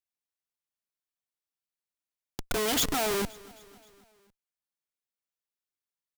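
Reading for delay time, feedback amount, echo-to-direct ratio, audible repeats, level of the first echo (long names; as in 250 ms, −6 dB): 263 ms, 57%, −20.5 dB, 3, −22.0 dB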